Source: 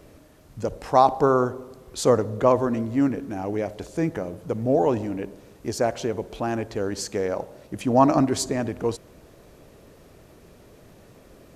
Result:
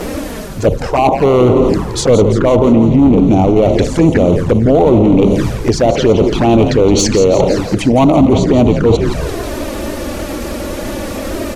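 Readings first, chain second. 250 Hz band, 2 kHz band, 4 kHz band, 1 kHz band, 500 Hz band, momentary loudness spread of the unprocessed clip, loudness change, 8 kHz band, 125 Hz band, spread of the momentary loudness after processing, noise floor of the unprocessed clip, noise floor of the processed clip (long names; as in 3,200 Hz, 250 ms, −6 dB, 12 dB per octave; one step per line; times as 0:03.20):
+15.5 dB, +12.5 dB, +15.0 dB, +7.0 dB, +13.0 dB, 14 LU, +12.5 dB, +12.0 dB, +17.5 dB, 13 LU, −52 dBFS, −22 dBFS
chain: treble cut that deepens with the level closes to 1,800 Hz, closed at −20 dBFS
low-shelf EQ 93 Hz −3 dB
reversed playback
downward compressor 6 to 1, threshold −35 dBFS, peak gain reduction 22 dB
reversed playback
hard clipping −33 dBFS, distortion −13 dB
on a send: echo with shifted repeats 170 ms, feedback 58%, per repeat −85 Hz, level −9 dB
on the sum: flanger swept by the level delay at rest 9.3 ms, full sweep at −35.5 dBFS
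boost into a limiter +33.5 dB
level −1 dB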